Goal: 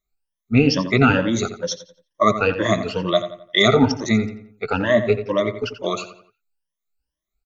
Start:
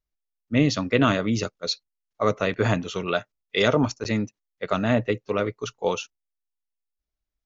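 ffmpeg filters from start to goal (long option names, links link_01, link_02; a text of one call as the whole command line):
ffmpeg -i in.wav -filter_complex "[0:a]afftfilt=real='re*pow(10,24/40*sin(2*PI*(1.2*log(max(b,1)*sr/1024/100)/log(2)-(2.2)*(pts-256)/sr)))':imag='im*pow(10,24/40*sin(2*PI*(1.2*log(max(b,1)*sr/1024/100)/log(2)-(2.2)*(pts-256)/sr)))':win_size=1024:overlap=0.75,asplit=2[link_01][link_02];[link_02]adelay=87,lowpass=frequency=3300:poles=1,volume=-10.5dB,asplit=2[link_03][link_04];[link_04]adelay=87,lowpass=frequency=3300:poles=1,volume=0.41,asplit=2[link_05][link_06];[link_06]adelay=87,lowpass=frequency=3300:poles=1,volume=0.41,asplit=2[link_07][link_08];[link_08]adelay=87,lowpass=frequency=3300:poles=1,volume=0.41[link_09];[link_01][link_03][link_05][link_07][link_09]amix=inputs=5:normalize=0,volume=-1dB" out.wav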